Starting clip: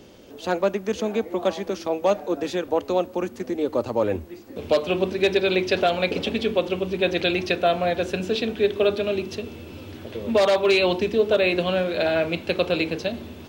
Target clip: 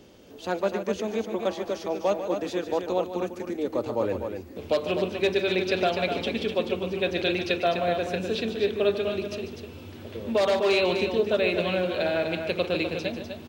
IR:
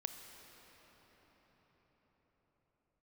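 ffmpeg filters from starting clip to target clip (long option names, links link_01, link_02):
-af "aecho=1:1:145.8|250.7:0.282|0.447,volume=-4.5dB"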